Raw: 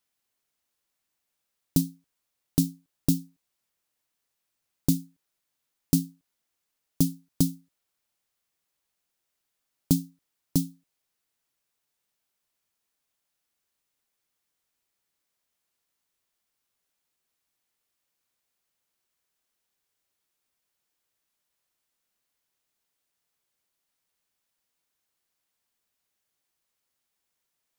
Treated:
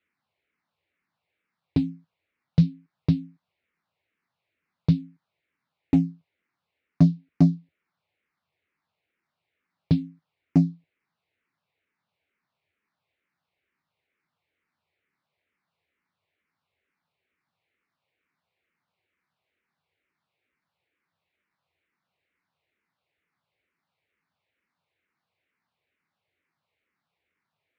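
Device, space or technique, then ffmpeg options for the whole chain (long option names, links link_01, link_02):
barber-pole phaser into a guitar amplifier: -filter_complex "[0:a]asplit=2[link_01][link_02];[link_02]afreqshift=-2.2[link_03];[link_01][link_03]amix=inputs=2:normalize=1,asoftclip=type=tanh:threshold=-19dB,highpass=80,equalizer=frequency=88:width_type=q:width=4:gain=7,equalizer=frequency=160:width_type=q:width=4:gain=6,equalizer=frequency=2200:width_type=q:width=4:gain=5,equalizer=frequency=3200:width_type=q:width=4:gain=-5,lowpass=frequency=3400:width=0.5412,lowpass=frequency=3400:width=1.3066,volume=8dB"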